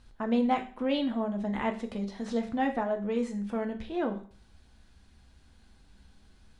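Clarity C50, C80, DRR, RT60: 12.0 dB, 16.5 dB, 4.0 dB, 0.45 s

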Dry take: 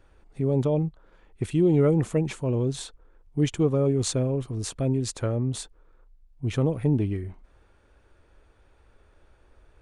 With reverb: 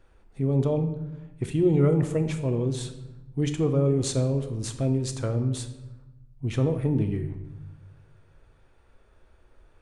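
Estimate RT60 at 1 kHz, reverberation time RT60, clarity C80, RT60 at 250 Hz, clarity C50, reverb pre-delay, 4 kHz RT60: 0.95 s, 1.0 s, 12.5 dB, 1.4 s, 10.0 dB, 4 ms, 0.70 s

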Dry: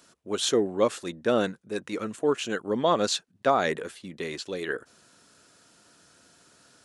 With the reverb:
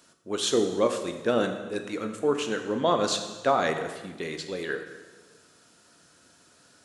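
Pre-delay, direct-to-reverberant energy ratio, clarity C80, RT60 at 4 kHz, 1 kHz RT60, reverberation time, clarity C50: 15 ms, 6.0 dB, 9.5 dB, 1.2 s, 1.3 s, 1.3 s, 8.0 dB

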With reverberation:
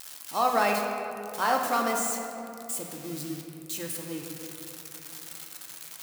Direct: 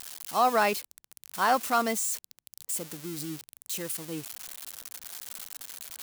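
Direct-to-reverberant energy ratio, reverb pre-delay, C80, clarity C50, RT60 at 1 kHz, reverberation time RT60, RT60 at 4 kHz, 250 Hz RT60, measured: 1.0 dB, 3 ms, 4.5 dB, 3.0 dB, 2.6 s, 2.9 s, 1.5 s, 3.4 s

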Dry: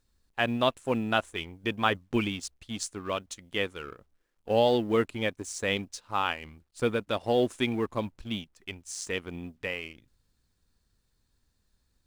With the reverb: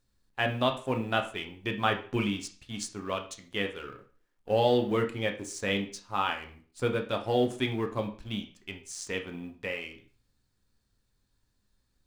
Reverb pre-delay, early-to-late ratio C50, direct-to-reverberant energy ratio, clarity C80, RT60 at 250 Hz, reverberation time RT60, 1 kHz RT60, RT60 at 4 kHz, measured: 5 ms, 11.0 dB, 3.5 dB, 16.0 dB, 0.40 s, 0.40 s, 0.40 s, 0.40 s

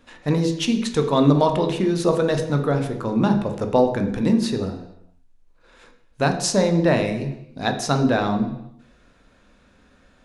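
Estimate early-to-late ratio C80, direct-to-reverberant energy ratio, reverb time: 11.0 dB, 4.5 dB, 0.80 s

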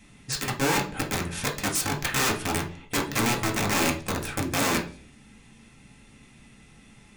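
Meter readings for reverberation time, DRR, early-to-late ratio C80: 0.45 s, -1.5 dB, 16.5 dB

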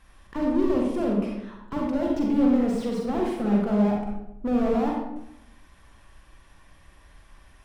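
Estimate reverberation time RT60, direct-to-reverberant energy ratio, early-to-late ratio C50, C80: 0.85 s, -1.5 dB, 0.5 dB, 4.0 dB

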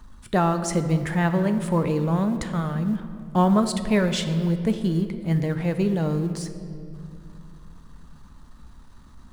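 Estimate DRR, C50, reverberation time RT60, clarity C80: 8.0 dB, 10.0 dB, 2.6 s, 10.5 dB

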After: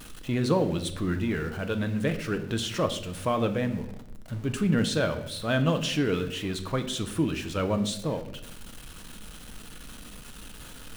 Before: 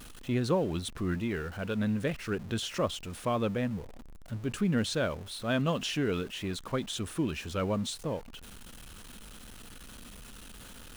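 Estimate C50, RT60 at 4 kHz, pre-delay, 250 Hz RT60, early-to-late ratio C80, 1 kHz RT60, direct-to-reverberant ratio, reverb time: 12.0 dB, 0.65 s, 6 ms, 0.95 s, 14.0 dB, 0.65 s, 7.0 dB, 0.75 s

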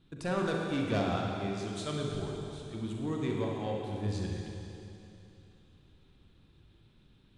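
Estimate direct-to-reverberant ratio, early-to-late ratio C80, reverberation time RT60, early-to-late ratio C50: -1.0 dB, 1.5 dB, 2.9 s, 0.0 dB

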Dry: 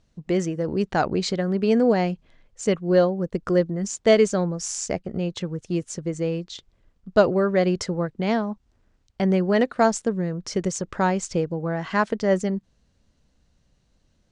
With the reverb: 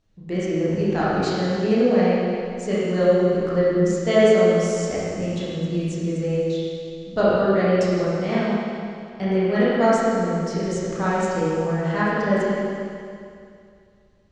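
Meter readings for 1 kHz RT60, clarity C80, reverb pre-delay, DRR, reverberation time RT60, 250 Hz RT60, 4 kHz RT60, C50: 2.4 s, -2.0 dB, 18 ms, -9.5 dB, 2.4 s, 2.4 s, 2.4 s, -4.5 dB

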